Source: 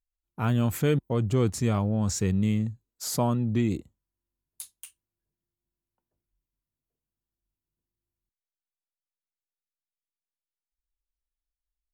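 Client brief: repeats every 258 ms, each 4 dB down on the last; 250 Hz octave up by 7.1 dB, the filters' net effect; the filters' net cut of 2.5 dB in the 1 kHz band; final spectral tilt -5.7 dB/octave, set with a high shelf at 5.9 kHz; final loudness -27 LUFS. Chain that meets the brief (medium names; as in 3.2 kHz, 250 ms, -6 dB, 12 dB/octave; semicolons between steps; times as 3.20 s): peaking EQ 250 Hz +8.5 dB; peaking EQ 1 kHz -4 dB; treble shelf 5.9 kHz +7 dB; feedback delay 258 ms, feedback 63%, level -4 dB; trim -6 dB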